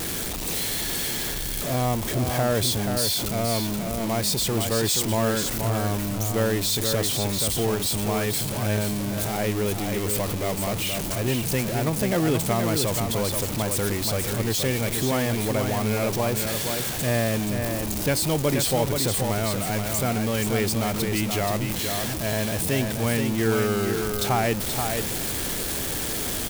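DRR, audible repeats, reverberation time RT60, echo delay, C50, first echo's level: no reverb, 1, no reverb, 478 ms, no reverb, -5.5 dB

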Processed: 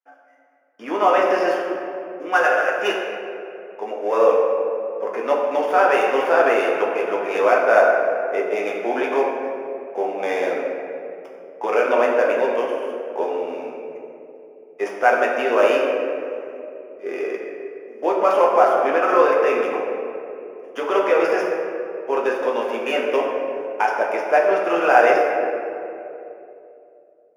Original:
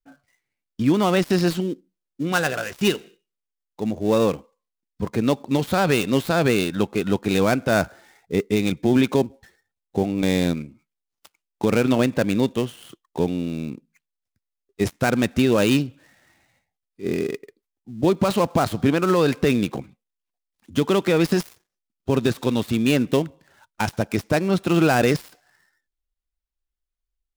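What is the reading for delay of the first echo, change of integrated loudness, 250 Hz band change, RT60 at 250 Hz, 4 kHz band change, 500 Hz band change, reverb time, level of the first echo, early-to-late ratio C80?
no echo, +2.0 dB, -9.5 dB, 3.2 s, -5.5 dB, +5.5 dB, 3.0 s, no echo, 3.0 dB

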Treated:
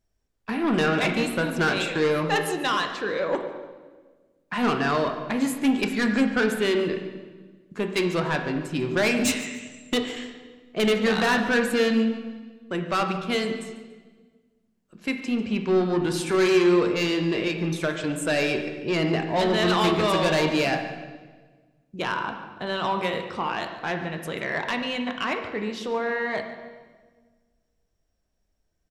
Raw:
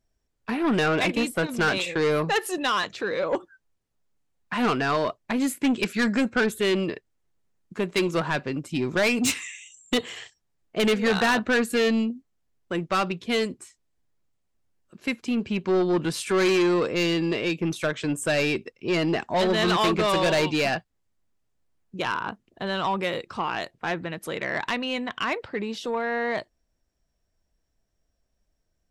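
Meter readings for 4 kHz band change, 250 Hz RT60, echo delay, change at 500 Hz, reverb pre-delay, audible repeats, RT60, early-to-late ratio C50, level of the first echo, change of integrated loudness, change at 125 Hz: 0.0 dB, 1.8 s, 143 ms, +1.0 dB, 15 ms, 1, 1.4 s, 6.5 dB, -17.0 dB, +0.5 dB, +1.5 dB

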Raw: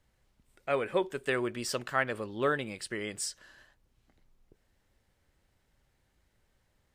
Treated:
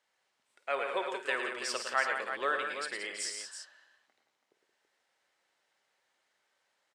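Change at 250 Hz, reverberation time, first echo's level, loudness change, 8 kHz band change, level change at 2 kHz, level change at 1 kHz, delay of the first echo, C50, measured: -11.5 dB, no reverb, -12.5 dB, -1.0 dB, -0.5 dB, +2.0 dB, +1.0 dB, 51 ms, no reverb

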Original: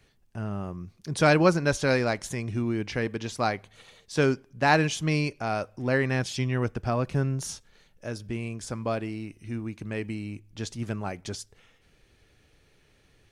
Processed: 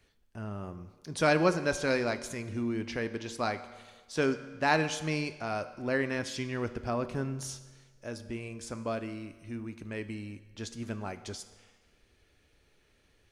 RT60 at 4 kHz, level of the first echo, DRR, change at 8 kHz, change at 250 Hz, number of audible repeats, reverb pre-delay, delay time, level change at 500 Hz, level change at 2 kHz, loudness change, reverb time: 1.3 s, no echo, 11.0 dB, -4.0 dB, -5.0 dB, no echo, 8 ms, no echo, -4.5 dB, -4.0 dB, -5.0 dB, 1.4 s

